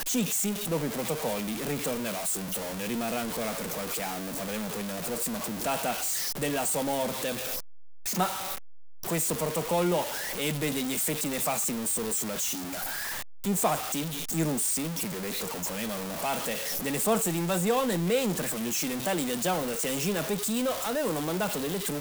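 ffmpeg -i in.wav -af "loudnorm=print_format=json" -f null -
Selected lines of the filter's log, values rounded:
"input_i" : "-29.1",
"input_tp" : "-14.4",
"input_lra" : "3.1",
"input_thresh" : "-39.1",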